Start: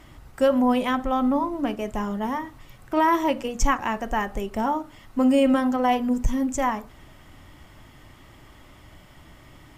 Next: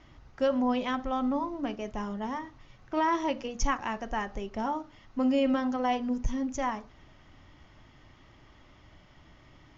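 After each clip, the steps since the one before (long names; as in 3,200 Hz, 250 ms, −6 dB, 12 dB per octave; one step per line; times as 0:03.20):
Butterworth low-pass 6,700 Hz 96 dB per octave
dynamic equaliser 5,000 Hz, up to +4 dB, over −47 dBFS, Q 1.1
level −7 dB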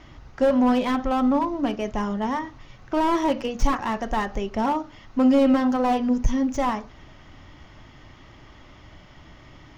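slew-rate limiting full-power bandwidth 34 Hz
level +8.5 dB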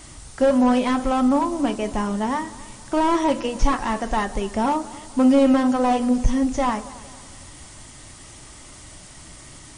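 background noise violet −39 dBFS
echo machine with several playback heads 91 ms, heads second and third, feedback 49%, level −21 dB
level +2.5 dB
MP3 40 kbit/s 22,050 Hz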